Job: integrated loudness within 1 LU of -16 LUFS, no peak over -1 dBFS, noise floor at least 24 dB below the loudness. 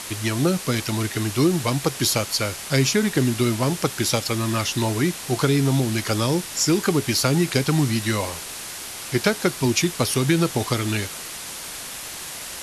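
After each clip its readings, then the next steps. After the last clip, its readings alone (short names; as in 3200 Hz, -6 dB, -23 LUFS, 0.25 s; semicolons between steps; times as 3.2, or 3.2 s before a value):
noise floor -35 dBFS; noise floor target -47 dBFS; loudness -22.5 LUFS; peak -5.0 dBFS; loudness target -16.0 LUFS
-> noise print and reduce 12 dB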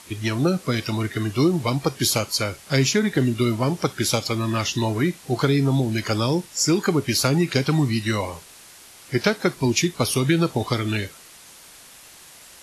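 noise floor -47 dBFS; loudness -22.0 LUFS; peak -5.0 dBFS; loudness target -16.0 LUFS
-> gain +6 dB; limiter -1 dBFS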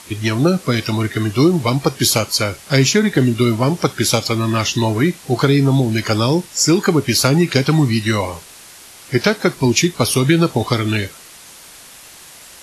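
loudness -16.5 LUFS; peak -1.0 dBFS; noise floor -41 dBFS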